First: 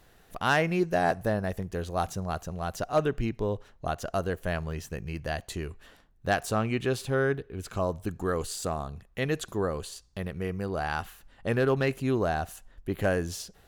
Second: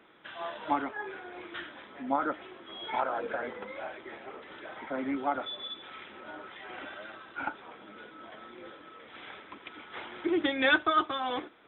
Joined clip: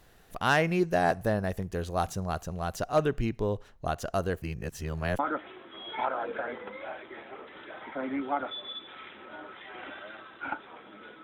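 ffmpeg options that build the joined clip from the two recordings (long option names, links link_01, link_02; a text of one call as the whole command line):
ffmpeg -i cue0.wav -i cue1.wav -filter_complex "[0:a]apad=whole_dur=11.23,atrim=end=11.23,asplit=2[link_01][link_02];[link_01]atrim=end=4.422[link_03];[link_02]atrim=start=4.418:end=5.192,asetpts=PTS-STARTPTS,areverse[link_04];[1:a]atrim=start=2.138:end=8.18[link_05];[link_03][link_04]acrossfade=duration=0.004:curve1=hsin:curve2=hsin[link_06];[link_06][link_05]acrossfade=duration=0.004:curve1=hsin:curve2=hsin" out.wav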